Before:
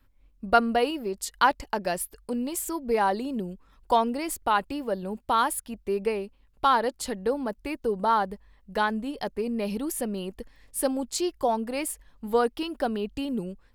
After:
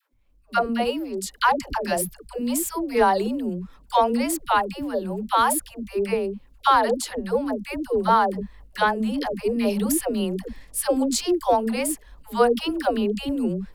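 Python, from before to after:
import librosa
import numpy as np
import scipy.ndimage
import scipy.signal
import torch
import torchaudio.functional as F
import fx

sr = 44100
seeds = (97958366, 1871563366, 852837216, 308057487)

y = fx.transient(x, sr, attack_db=-1, sustain_db=4)
y = fx.dispersion(y, sr, late='lows', ms=123.0, hz=450.0)
y = fx.rider(y, sr, range_db=10, speed_s=2.0)
y = F.gain(torch.from_numpy(y), 3.0).numpy()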